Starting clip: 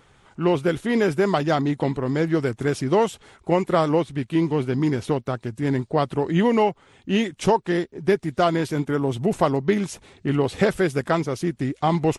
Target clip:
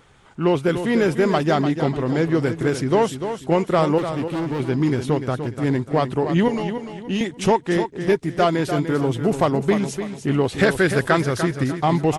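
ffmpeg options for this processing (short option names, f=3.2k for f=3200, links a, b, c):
-filter_complex "[0:a]aeval=exprs='0.531*(cos(1*acos(clip(val(0)/0.531,-1,1)))-cos(1*PI/2))+0.0473*(cos(5*acos(clip(val(0)/0.531,-1,1)))-cos(5*PI/2))+0.0133*(cos(7*acos(clip(val(0)/0.531,-1,1)))-cos(7*PI/2))':c=same,asettb=1/sr,asplit=3[a][b][c];[a]atrim=end=3.984[d];[b]atrim=start=3.98:end=4.6,asetpts=PTS-STARTPTS,afade=t=in:d=0.004:c=qsin,afade=t=out:st=0.616:d=0.004:c=qsin,asoftclip=type=hard:threshold=-22.5dB[e];[c]atrim=start=4.596[f];[d][e]acrossfade=d=0.004:c1=hsin:c2=qsin[g];[g][f]acrossfade=d=0.004:c1=qsin:c2=hsin,asettb=1/sr,asplit=3[h][i][j];[h]atrim=end=6.484[k];[i]atrim=start=6.48:end=7.21,asetpts=PTS-STARTPTS,afade=t=in:d=0.004:c=qsin,afade=t=out:st=0.726:d=0.004:c=qsin,acrossover=split=180|3000[l][m][n];[m]acompressor=threshold=-27dB:ratio=6[o];[l][o][n]amix=inputs=3:normalize=0[p];[j]atrim=start=7.206[q];[k][p]acrossfade=d=0.004:c1=hsin:c2=qsin[r];[r][q]acrossfade=d=0.004:c1=qsin:c2=hsin,asettb=1/sr,asplit=3[s][t][u];[s]atrim=end=10.584[v];[t]atrim=start=10.58:end=11.64,asetpts=PTS-STARTPTS,afade=t=in:d=0.004:c=qsin,afade=t=out:st=1.056:d=0.004:c=qsin,equalizer=f=100:t=o:w=0.67:g=7,equalizer=f=1.6k:t=o:w=0.67:g=7,equalizer=f=4k:t=o:w=0.67:g=5,equalizer=f=10k:t=o:w=0.67:g=5[w];[u]atrim=start=11.636[x];[v][w]acrossfade=d=0.004:c1=hsin:c2=qsin[y];[y][x]acrossfade=d=0.004:c1=qsin:c2=hsin,asplit=2[z][aa];[aa]aecho=0:1:296|592|888|1184:0.355|0.121|0.041|0.0139[ab];[z][ab]amix=inputs=2:normalize=0"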